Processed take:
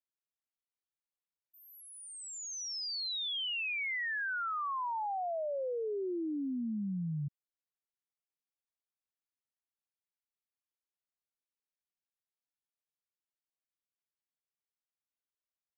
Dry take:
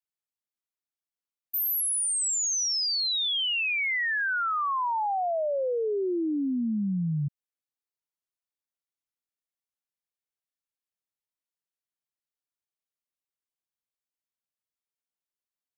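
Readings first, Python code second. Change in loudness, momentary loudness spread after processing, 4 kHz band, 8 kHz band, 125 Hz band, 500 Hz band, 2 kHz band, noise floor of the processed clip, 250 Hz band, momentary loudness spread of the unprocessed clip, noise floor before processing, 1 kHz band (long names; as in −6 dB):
−9.5 dB, 11 LU, −9.5 dB, −16.5 dB, −8.0 dB, −8.0 dB, −8.0 dB, below −85 dBFS, −8.0 dB, 4 LU, below −85 dBFS, −8.0 dB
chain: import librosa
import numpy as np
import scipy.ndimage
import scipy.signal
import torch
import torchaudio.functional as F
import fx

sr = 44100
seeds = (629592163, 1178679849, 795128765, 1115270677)

y = scipy.signal.sosfilt(scipy.signal.butter(2, 4900.0, 'lowpass', fs=sr, output='sos'), x)
y = y * 10.0 ** (-8.0 / 20.0)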